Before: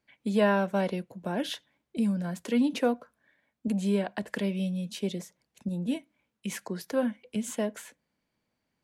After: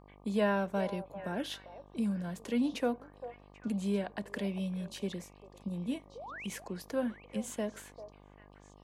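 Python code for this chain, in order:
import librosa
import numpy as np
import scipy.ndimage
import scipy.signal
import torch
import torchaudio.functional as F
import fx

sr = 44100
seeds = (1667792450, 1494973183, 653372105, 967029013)

p1 = fx.spec_paint(x, sr, seeds[0], shape='rise', start_s=6.15, length_s=0.32, low_hz=420.0, high_hz=3300.0, level_db=-39.0)
p2 = p1 + fx.echo_stepped(p1, sr, ms=395, hz=670.0, octaves=1.4, feedback_pct=70, wet_db=-9.5, dry=0)
p3 = fx.dmg_buzz(p2, sr, base_hz=50.0, harmonics=24, level_db=-52.0, tilt_db=-3, odd_only=False)
y = p3 * librosa.db_to_amplitude(-5.5)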